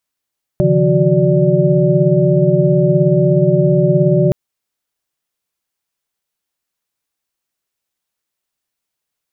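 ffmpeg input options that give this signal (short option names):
-f lavfi -i "aevalsrc='0.168*(sin(2*PI*138.59*t)+sin(2*PI*155.56*t)+sin(2*PI*174.61*t)+sin(2*PI*369.99*t)+sin(2*PI*587.33*t))':d=3.72:s=44100"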